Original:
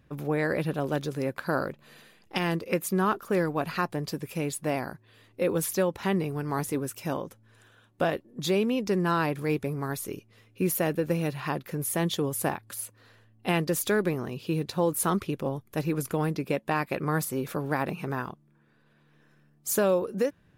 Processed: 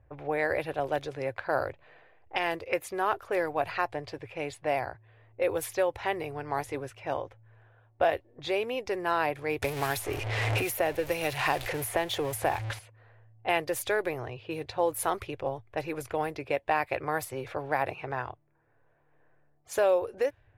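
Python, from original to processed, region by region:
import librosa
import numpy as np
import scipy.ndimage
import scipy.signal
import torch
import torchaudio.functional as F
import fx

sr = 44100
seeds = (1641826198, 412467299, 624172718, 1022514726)

y = fx.chain(x, sr, fx.zero_step(step_db=-35.0),
    fx.band_squash(depth_pct=100), at=(9.62, 12.79))
y = fx.env_lowpass(y, sr, base_hz=1200.0, full_db=-23.0)
y = fx.curve_eq(y, sr, hz=(110.0, 190.0, 290.0, 740.0, 1200.0, 2100.0, 3000.0, 4900.0, 7000.0, 14000.0), db=(0, -29, -13, 1, -8, -1, -5, -9, -10, -7))
y = y * 10.0 ** (4.0 / 20.0)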